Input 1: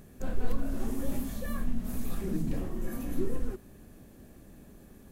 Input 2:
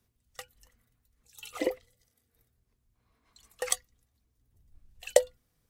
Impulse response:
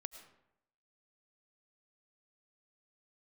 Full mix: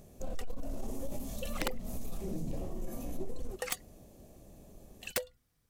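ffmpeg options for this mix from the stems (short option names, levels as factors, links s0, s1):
-filter_complex "[0:a]asoftclip=type=tanh:threshold=0.075,equalizer=f=250:t=o:w=0.67:g=-4,equalizer=f=630:t=o:w=0.67:g=7,equalizer=f=1600:t=o:w=0.67:g=-11,equalizer=f=6300:t=o:w=0.67:g=5,volume=0.75[s0];[1:a]equalizer=f=500:w=1.5:g=-2.5,volume=0.841[s1];[s0][s1]amix=inputs=2:normalize=0,aeval=exprs='(mod(8.91*val(0)+1,2)-1)/8.91':c=same,acompressor=threshold=0.0282:ratio=2.5"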